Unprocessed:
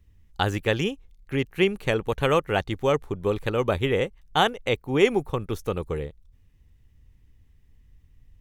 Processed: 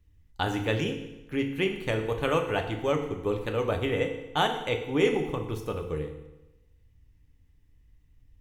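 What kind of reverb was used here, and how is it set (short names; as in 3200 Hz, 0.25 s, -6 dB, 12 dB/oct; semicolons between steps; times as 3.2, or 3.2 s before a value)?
FDN reverb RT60 1 s, low-frequency decay 1.05×, high-frequency decay 0.9×, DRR 3.5 dB; gain -5.5 dB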